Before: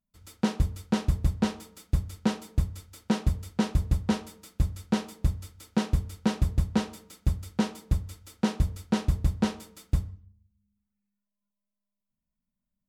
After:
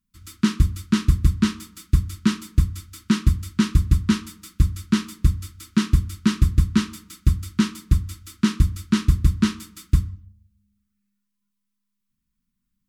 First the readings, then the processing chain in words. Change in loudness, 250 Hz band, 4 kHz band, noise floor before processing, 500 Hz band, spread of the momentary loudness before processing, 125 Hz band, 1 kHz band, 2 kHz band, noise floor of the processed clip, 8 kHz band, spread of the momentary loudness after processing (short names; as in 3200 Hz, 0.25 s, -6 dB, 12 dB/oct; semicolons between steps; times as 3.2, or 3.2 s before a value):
+7.0 dB, +7.0 dB, +7.5 dB, under -85 dBFS, -3.0 dB, 5 LU, +7.5 dB, +0.5 dB, +7.0 dB, -78 dBFS, +8.0 dB, 5 LU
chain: elliptic band-stop 350–1100 Hz, stop band 40 dB; gain +8 dB